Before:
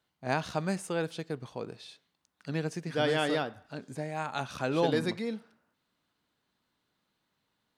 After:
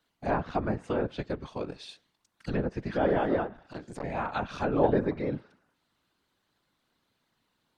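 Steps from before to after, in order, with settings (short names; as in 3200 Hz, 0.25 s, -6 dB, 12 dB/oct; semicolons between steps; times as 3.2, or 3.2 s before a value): treble ducked by the level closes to 1200 Hz, closed at -27.5 dBFS; whisperiser; 3.46–4.04 core saturation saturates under 680 Hz; gain +3 dB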